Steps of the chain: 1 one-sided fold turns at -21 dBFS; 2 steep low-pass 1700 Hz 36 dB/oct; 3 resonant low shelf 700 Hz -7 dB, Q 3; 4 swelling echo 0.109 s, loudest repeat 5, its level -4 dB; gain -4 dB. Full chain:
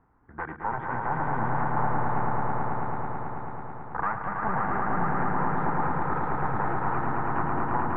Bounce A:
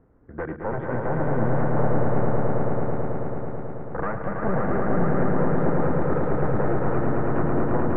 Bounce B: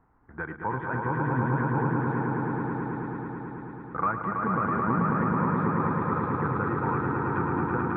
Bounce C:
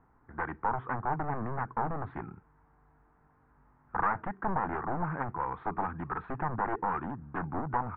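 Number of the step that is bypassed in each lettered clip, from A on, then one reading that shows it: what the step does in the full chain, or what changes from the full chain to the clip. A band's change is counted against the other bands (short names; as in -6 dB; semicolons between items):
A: 3, 1 kHz band -11.0 dB; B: 1, crest factor change +2.5 dB; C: 4, momentary loudness spread change -2 LU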